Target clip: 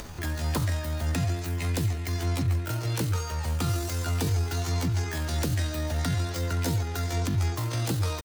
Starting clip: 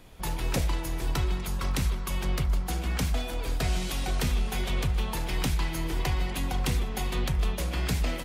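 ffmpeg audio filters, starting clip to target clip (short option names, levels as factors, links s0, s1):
-af "asetrate=83250,aresample=44100,atempo=0.529732,acompressor=mode=upward:threshold=0.0316:ratio=2.5"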